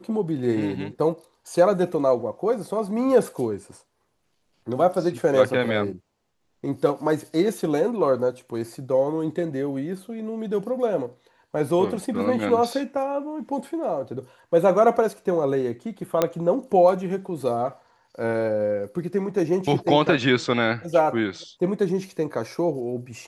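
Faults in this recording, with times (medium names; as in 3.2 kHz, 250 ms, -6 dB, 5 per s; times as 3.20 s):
16.22 s: pop -6 dBFS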